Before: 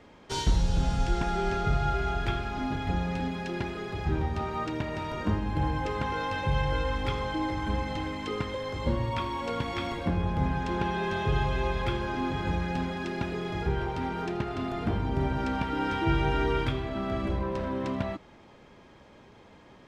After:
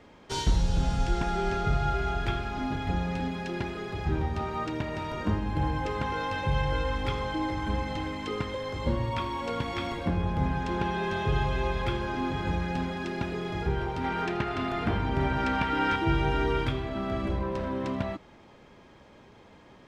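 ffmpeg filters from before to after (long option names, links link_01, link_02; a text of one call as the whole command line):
ffmpeg -i in.wav -filter_complex "[0:a]asettb=1/sr,asplit=3[link_01][link_02][link_03];[link_01]atrim=end=14.044[link_04];[link_02]atrim=start=14.04:end=15.96,asetpts=PTS-STARTPTS,afade=type=in:duration=0.004:curve=qsin,afade=type=out:start_time=1.916:duration=0.004:curve=qsin,equalizer=frequency=1900:width=0.58:gain=7[link_05];[link_03]atrim=start=15.956[link_06];[link_04][link_05]acrossfade=duration=0.004:curve1=hsin:curve2=qsin[link_07];[link_07][link_06]acrossfade=duration=0.004:curve1=qsin:curve2=hsin" out.wav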